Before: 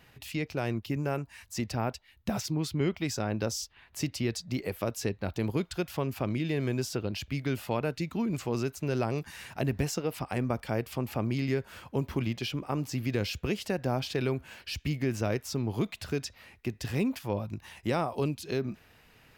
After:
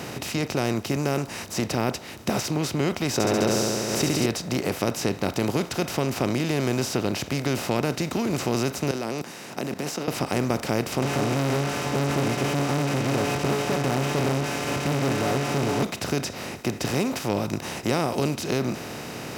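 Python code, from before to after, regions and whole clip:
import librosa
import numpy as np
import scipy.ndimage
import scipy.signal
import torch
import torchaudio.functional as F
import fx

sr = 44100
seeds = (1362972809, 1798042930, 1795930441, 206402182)

y = fx.chain(x, sr, fx.small_body(hz=(390.0, 3800.0), ring_ms=25, db=9),
    fx.room_flutter(wall_m=11.8, rt60_s=1.2),
    fx.pre_swell(db_per_s=110.0), at=(3.13, 4.26))
y = fx.chain(y, sr, fx.highpass(hz=190.0, slope=24),
    fx.level_steps(step_db=22), at=(8.91, 10.08))
y = fx.chain(y, sr, fx.delta_mod(bps=16000, step_db=-41.5),
    fx.stiff_resonator(f0_hz=140.0, decay_s=0.22, stiffness=0.002),
    fx.leveller(passes=5), at=(11.02, 15.83))
y = fx.bin_compress(y, sr, power=0.4)
y = scipy.signal.sosfilt(scipy.signal.butter(2, 87.0, 'highpass', fs=sr, output='sos'), y)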